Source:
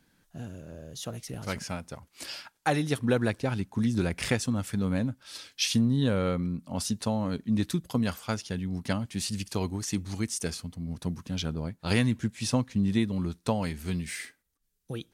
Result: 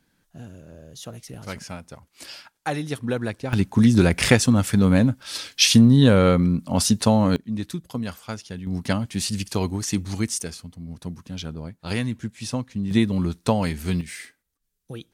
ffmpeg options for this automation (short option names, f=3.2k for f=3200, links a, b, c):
-af "asetnsamples=n=441:p=0,asendcmd='3.53 volume volume 11dB;7.36 volume volume -1.5dB;8.67 volume volume 6dB;10.42 volume volume -1dB;12.91 volume volume 7dB;14.01 volume volume 0dB',volume=-0.5dB"